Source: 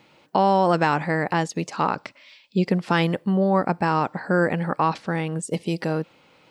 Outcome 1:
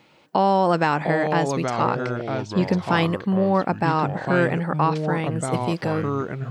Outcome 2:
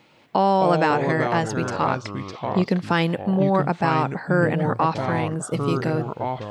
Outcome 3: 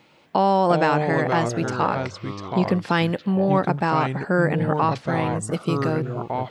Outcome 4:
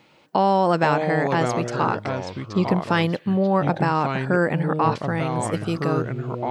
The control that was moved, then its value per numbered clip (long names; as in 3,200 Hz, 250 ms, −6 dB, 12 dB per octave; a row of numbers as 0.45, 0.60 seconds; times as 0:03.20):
delay with pitch and tempo change per echo, delay time: 612, 169, 260, 387 milliseconds